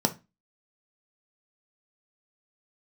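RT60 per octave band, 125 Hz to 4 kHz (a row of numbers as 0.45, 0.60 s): 0.35, 0.35, 0.25, 0.25, 0.25, 0.25 s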